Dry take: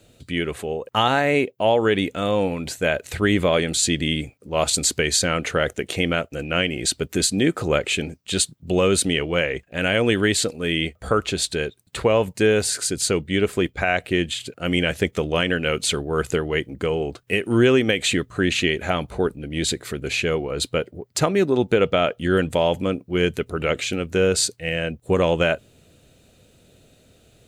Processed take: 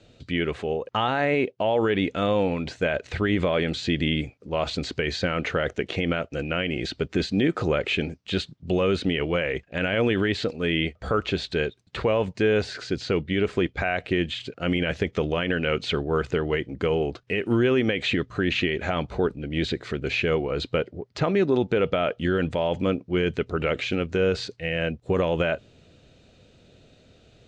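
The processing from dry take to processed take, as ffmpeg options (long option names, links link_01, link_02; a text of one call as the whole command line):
ffmpeg -i in.wav -filter_complex "[0:a]asettb=1/sr,asplit=3[link_01][link_02][link_03];[link_01]atrim=end=12.734[link_04];[link_02]atrim=start=12.73:end=13.34,asetpts=PTS-STARTPTS,afade=type=in:duration=0.004:curve=qsin,afade=type=out:start_time=0.606:duration=0.004:curve=qsin,lowpass=6300[link_05];[link_03]atrim=start=13.336[link_06];[link_04][link_05]acrossfade=duration=0.004:curve1=hsin:curve2=qsin[link_07];[link_07][link_06]acrossfade=duration=0.004:curve1=qsin:curve2=hsin,acrossover=split=3400[link_08][link_09];[link_09]acompressor=threshold=-39dB:ratio=4:attack=1:release=60[link_10];[link_08][link_10]amix=inputs=2:normalize=0,lowpass=frequency=5800:width=0.5412,lowpass=frequency=5800:width=1.3066,alimiter=limit=-13dB:level=0:latency=1:release=41" out.wav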